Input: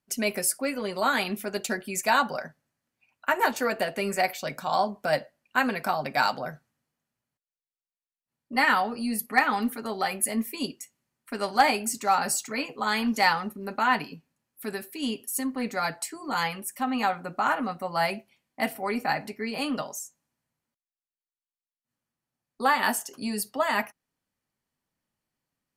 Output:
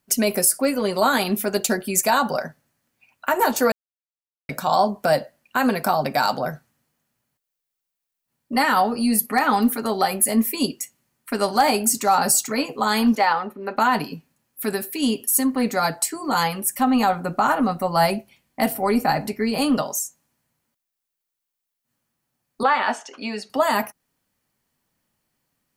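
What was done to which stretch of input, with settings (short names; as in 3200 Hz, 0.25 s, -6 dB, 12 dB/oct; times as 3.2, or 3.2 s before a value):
3.72–4.49 mute
13.15–13.77 three-band isolator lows -14 dB, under 320 Hz, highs -19 dB, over 3600 Hz
16.64–19.78 low shelf 99 Hz +10.5 dB
22.63–23.5 speaker cabinet 360–5000 Hz, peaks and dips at 380 Hz -4 dB, 1400 Hz +4 dB, 2300 Hz +7 dB, 4800 Hz -8 dB
whole clip: high shelf 12000 Hz +8 dB; limiter -15 dBFS; dynamic EQ 2200 Hz, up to -8 dB, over -43 dBFS, Q 1.1; gain +9 dB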